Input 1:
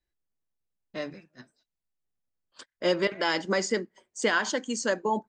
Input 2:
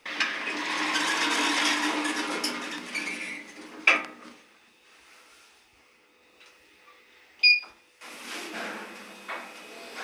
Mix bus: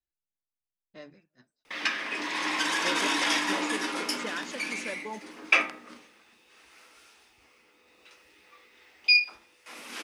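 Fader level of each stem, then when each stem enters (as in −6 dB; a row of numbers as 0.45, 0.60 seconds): −12.0, −1.5 decibels; 0.00, 1.65 seconds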